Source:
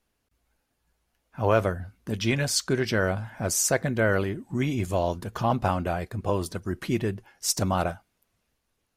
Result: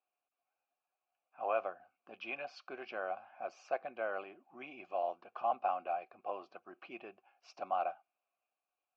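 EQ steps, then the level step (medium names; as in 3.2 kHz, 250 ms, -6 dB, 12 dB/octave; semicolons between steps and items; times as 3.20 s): vowel filter a; distance through air 160 m; cabinet simulation 410–5500 Hz, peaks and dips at 450 Hz -7 dB, 660 Hz -7 dB, 1.1 kHz -6 dB, 3.6 kHz -7 dB; +4.5 dB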